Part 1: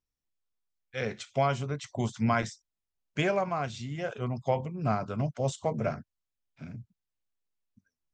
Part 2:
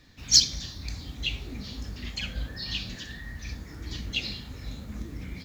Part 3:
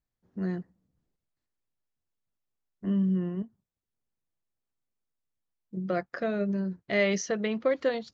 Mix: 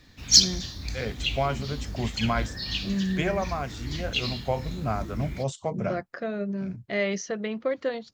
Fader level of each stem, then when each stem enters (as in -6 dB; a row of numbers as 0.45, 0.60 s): 0.0, +2.0, -1.5 dB; 0.00, 0.00, 0.00 s